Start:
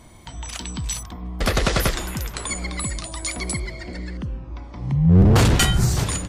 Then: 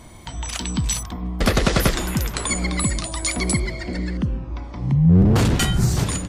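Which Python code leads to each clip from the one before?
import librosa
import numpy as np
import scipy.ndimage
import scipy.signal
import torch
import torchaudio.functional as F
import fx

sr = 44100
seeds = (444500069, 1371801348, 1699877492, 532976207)

y = fx.rider(x, sr, range_db=4, speed_s=0.5)
y = fx.dynamic_eq(y, sr, hz=220.0, q=0.87, threshold_db=-34.0, ratio=4.0, max_db=5)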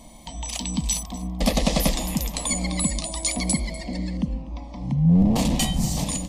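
y = fx.fixed_phaser(x, sr, hz=390.0, stages=6)
y = y + 10.0 ** (-19.0 / 20.0) * np.pad(y, (int(246 * sr / 1000.0), 0))[:len(y)]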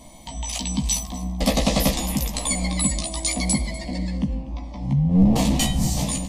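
y = fx.doubler(x, sr, ms=15.0, db=-3.5)
y = fx.rev_plate(y, sr, seeds[0], rt60_s=1.7, hf_ratio=0.65, predelay_ms=0, drr_db=17.0)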